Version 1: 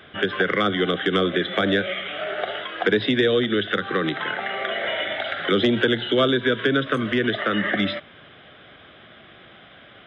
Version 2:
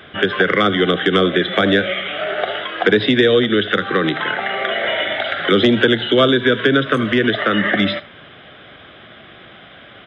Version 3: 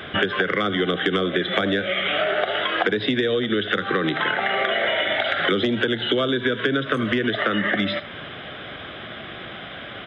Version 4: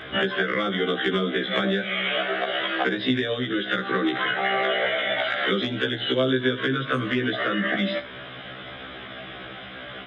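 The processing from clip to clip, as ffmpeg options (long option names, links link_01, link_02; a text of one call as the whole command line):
ffmpeg -i in.wav -af "aecho=1:1:79:0.126,volume=6dB" out.wav
ffmpeg -i in.wav -af "acompressor=threshold=-24dB:ratio=10,volume=5.5dB" out.wav
ffmpeg -i in.wav -af "afftfilt=real='re*1.73*eq(mod(b,3),0)':imag='im*1.73*eq(mod(b,3),0)':win_size=2048:overlap=0.75" out.wav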